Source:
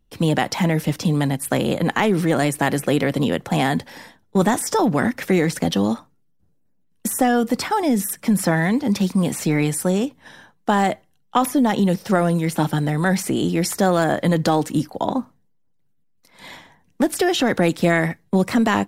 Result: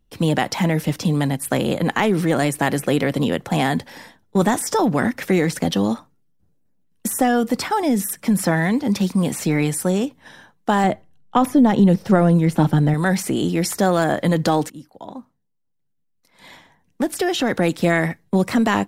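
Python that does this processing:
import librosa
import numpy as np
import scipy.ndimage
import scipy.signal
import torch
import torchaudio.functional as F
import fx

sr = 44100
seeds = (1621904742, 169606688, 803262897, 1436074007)

y = fx.tilt_eq(x, sr, slope=-2.0, at=(10.84, 12.94))
y = fx.edit(y, sr, fx.fade_in_from(start_s=14.7, length_s=3.35, floor_db=-19.0), tone=tone)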